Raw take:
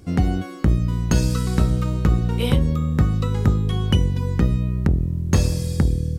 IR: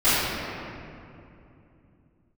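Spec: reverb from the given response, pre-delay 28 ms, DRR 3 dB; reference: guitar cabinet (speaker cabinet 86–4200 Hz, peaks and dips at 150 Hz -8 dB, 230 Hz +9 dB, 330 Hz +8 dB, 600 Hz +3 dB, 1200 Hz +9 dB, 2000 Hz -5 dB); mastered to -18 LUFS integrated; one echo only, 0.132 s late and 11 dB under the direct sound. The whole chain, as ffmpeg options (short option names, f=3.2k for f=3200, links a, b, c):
-filter_complex "[0:a]aecho=1:1:132:0.282,asplit=2[a][b];[1:a]atrim=start_sample=2205,adelay=28[c];[b][c]afir=irnorm=-1:irlink=0,volume=-23.5dB[d];[a][d]amix=inputs=2:normalize=0,highpass=86,equalizer=f=150:t=q:w=4:g=-8,equalizer=f=230:t=q:w=4:g=9,equalizer=f=330:t=q:w=4:g=8,equalizer=f=600:t=q:w=4:g=3,equalizer=f=1.2k:t=q:w=4:g=9,equalizer=f=2k:t=q:w=4:g=-5,lowpass=f=4.2k:w=0.5412,lowpass=f=4.2k:w=1.3066"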